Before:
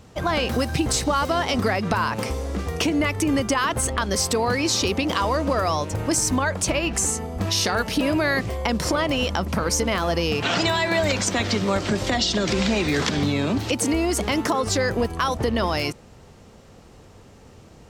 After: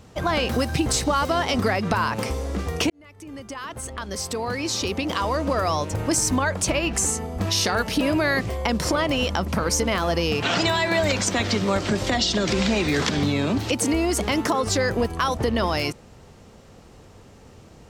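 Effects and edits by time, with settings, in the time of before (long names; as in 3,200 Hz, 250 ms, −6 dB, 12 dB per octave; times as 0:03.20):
0:02.90–0:05.84: fade in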